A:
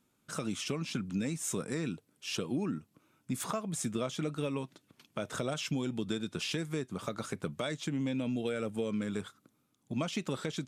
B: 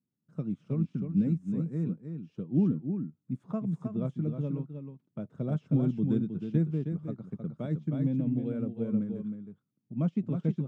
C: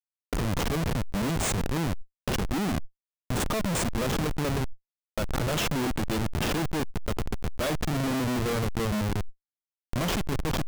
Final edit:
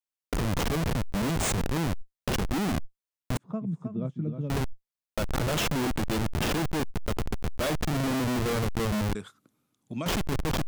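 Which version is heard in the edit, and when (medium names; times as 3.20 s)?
C
3.37–4.50 s: from B
9.15–10.06 s: from A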